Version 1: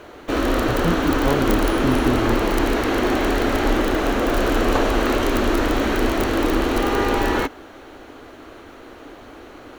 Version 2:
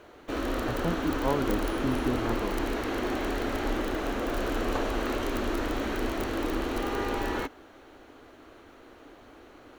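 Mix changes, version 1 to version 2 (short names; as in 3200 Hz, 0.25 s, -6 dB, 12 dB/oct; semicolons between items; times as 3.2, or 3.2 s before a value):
speech: add low shelf 450 Hz -10.5 dB; background -10.5 dB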